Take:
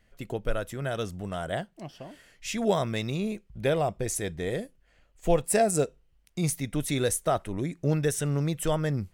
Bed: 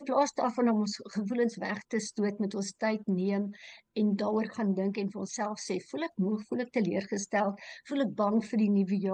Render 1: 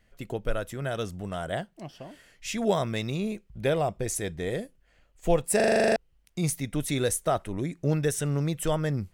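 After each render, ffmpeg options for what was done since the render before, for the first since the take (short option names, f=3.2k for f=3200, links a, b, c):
-filter_complex "[0:a]asplit=11[a][b][c][d][e][f][g][h][i][j][k];[a]atrim=end=5.602[l];[b]atrim=start=5.558:end=5.602[m];[c]atrim=start=5.558:end=5.602[n];[d]atrim=start=5.558:end=5.602[o];[e]atrim=start=5.558:end=5.602[p];[f]atrim=start=5.558:end=5.602[q];[g]atrim=start=5.558:end=5.602[r];[h]atrim=start=5.558:end=5.602[s];[i]atrim=start=5.558:end=5.602[t];[j]atrim=start=5.558:end=5.602[u];[k]atrim=start=5.958[v];[l][m]acrossfade=d=0.004:c1=hsin:c2=hsin[w];[w][n]acrossfade=d=0.004:c1=hsin:c2=hsin[x];[x][o]acrossfade=d=0.004:c1=hsin:c2=hsin[y];[y][p]acrossfade=d=0.004:c1=hsin:c2=hsin[z];[z][q]acrossfade=d=0.004:c1=hsin:c2=hsin[aa];[aa][r]acrossfade=d=0.004:c1=hsin:c2=hsin[ab];[ab][s]acrossfade=d=0.004:c1=hsin:c2=hsin[ac];[ac][t]acrossfade=d=0.004:c1=hsin:c2=hsin[ad];[ad][u]acrossfade=d=0.004:c1=hsin:c2=hsin[ae];[ae][v]acrossfade=d=0.004:c1=hsin:c2=hsin"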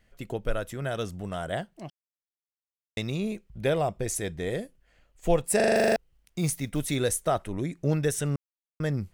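-filter_complex "[0:a]asettb=1/sr,asplit=3[a][b][c];[a]atrim=end=5.754[d];[b]atrim=start=5.75:end=6.96,asetpts=PTS-STARTPTS,afade=t=in:d=0.004:c=qsin,afade=t=out:st=1.206:d=0.004:c=qsin,acrusher=bits=7:mode=log:mix=0:aa=0.000001[e];[c]atrim=start=6.956[f];[d][e]acrossfade=d=0.004:c1=hsin:c2=qsin[g];[g][f]acrossfade=d=0.004:c1=qsin:c2=hsin,asplit=5[h][i][j][k][l];[h]atrim=end=1.9,asetpts=PTS-STARTPTS,afade=t=out:st=1.896:d=0.004:c=hsin[m];[i]atrim=start=1.9:end=2.97,asetpts=PTS-STARTPTS,volume=0[n];[j]atrim=start=2.97:end=8.36,asetpts=PTS-STARTPTS,afade=t=in:d=0.004:c=hsin,afade=t=out:st=5.386:d=0.004:c=hsin[o];[k]atrim=start=8.36:end=8.8,asetpts=PTS-STARTPTS,volume=0[p];[l]atrim=start=8.8,asetpts=PTS-STARTPTS,afade=t=in:d=0.004:c=hsin[q];[m][n][o][p][q]concat=n=5:v=0:a=1"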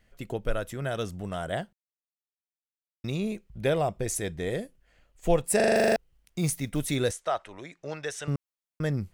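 -filter_complex "[0:a]asettb=1/sr,asplit=3[a][b][c];[a]atrim=end=7.114[d];[b]atrim=start=7.11:end=8.28,asetpts=PTS-STARTPTS,afade=t=in:d=0.004:c=qsin,afade=t=out:st=1.166:d=0.004:c=qsin,acrossover=split=540 7200:gain=0.126 1 0.0794[e][f][g];[e][f][g]amix=inputs=3:normalize=0[h];[c]atrim=start=8.276[i];[d][h]acrossfade=d=0.004:c1=hsin:c2=qsin[j];[j][i]acrossfade=d=0.004:c1=qsin:c2=hsin,asplit=3[k][l][m];[k]atrim=end=1.73,asetpts=PTS-STARTPTS,afade=t=out:st=1.726:d=0.004:c=hsin[n];[l]atrim=start=1.73:end=3.04,asetpts=PTS-STARTPTS,volume=0[o];[m]atrim=start=3.04,asetpts=PTS-STARTPTS,afade=t=in:d=0.004:c=hsin[p];[n][o][p]concat=n=3:v=0:a=1"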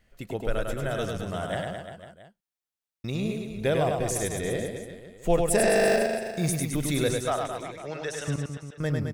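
-af "aecho=1:1:100|215|347.2|499.3|674.2:0.631|0.398|0.251|0.158|0.1"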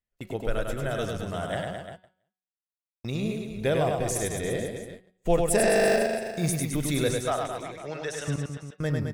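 -af "agate=range=-28dB:threshold=-41dB:ratio=16:detection=peak,bandreject=f=185.6:t=h:w=4,bandreject=f=371.2:t=h:w=4,bandreject=f=556.8:t=h:w=4,bandreject=f=742.4:t=h:w=4,bandreject=f=928:t=h:w=4,bandreject=f=1.1136k:t=h:w=4,bandreject=f=1.2992k:t=h:w=4,bandreject=f=1.4848k:t=h:w=4,bandreject=f=1.6704k:t=h:w=4,bandreject=f=1.856k:t=h:w=4,bandreject=f=2.0416k:t=h:w=4,bandreject=f=2.2272k:t=h:w=4,bandreject=f=2.4128k:t=h:w=4,bandreject=f=2.5984k:t=h:w=4,bandreject=f=2.784k:t=h:w=4,bandreject=f=2.9696k:t=h:w=4,bandreject=f=3.1552k:t=h:w=4,bandreject=f=3.3408k:t=h:w=4,bandreject=f=3.5264k:t=h:w=4,bandreject=f=3.712k:t=h:w=4,bandreject=f=3.8976k:t=h:w=4,bandreject=f=4.0832k:t=h:w=4,bandreject=f=4.2688k:t=h:w=4,bandreject=f=4.4544k:t=h:w=4,bandreject=f=4.64k:t=h:w=4,bandreject=f=4.8256k:t=h:w=4"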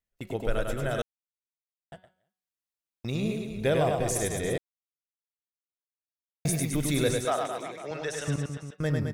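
-filter_complex "[0:a]asettb=1/sr,asplit=3[a][b][c];[a]atrim=end=7.254[d];[b]atrim=start=7.25:end=7.91,asetpts=PTS-STARTPTS,afade=t=in:d=0.004:c=qsin,afade=t=out:st=0.656:d=0.004:c=qsin,highpass=190[e];[c]atrim=start=7.906[f];[d][e]acrossfade=d=0.004:c1=hsin:c2=qsin[g];[g][f]acrossfade=d=0.004:c1=qsin:c2=hsin,asplit=5[h][i][j][k][l];[h]atrim=end=1.02,asetpts=PTS-STARTPTS,afade=t=out:st=1.016:d=0.004:c=hsin[m];[i]atrim=start=1.02:end=1.92,asetpts=PTS-STARTPTS,volume=0[n];[j]atrim=start=1.92:end=4.58,asetpts=PTS-STARTPTS,afade=t=in:d=0.004:c=hsin,afade=t=out:st=2.656:d=0.004:c=hsin[o];[k]atrim=start=4.58:end=6.45,asetpts=PTS-STARTPTS,volume=0[p];[l]atrim=start=6.45,asetpts=PTS-STARTPTS,afade=t=in:d=0.004:c=hsin[q];[m][n][o][p][q]concat=n=5:v=0:a=1"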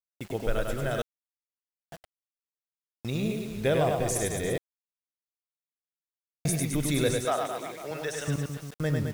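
-af "acrusher=bits=7:mix=0:aa=0.000001"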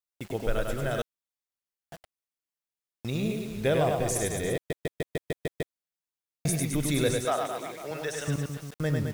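-filter_complex "[0:a]asplit=9[a][b][c][d][e][f][g][h][i];[a]atrim=end=4.702[j];[b]atrim=start=4.548:end=4.702[k];[c]atrim=start=4.548:end=4.702[l];[d]atrim=start=4.548:end=4.702[m];[e]atrim=start=4.548:end=4.702[n];[f]atrim=start=4.548:end=4.702[o];[g]atrim=start=4.548:end=4.702[p];[h]atrim=start=4.548:end=4.702[q];[i]atrim=start=5.748[r];[j][k]acrossfade=d=0.004:c1=hsin:c2=hsin[s];[s][l]acrossfade=d=0.004:c1=hsin:c2=hsin[t];[t][m]acrossfade=d=0.004:c1=hsin:c2=hsin[u];[u][n]acrossfade=d=0.004:c1=hsin:c2=hsin[v];[v][o]acrossfade=d=0.004:c1=hsin:c2=hsin[w];[w][p]acrossfade=d=0.004:c1=hsin:c2=hsin[x];[x][q]acrossfade=d=0.004:c1=hsin:c2=hsin[y];[y][r]acrossfade=d=0.004:c1=hsin:c2=hsin"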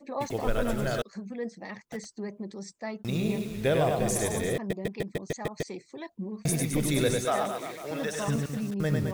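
-filter_complex "[1:a]volume=-6.5dB[a];[0:a][a]amix=inputs=2:normalize=0"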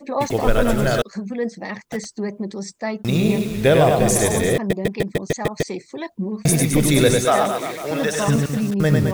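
-af "volume=10.5dB"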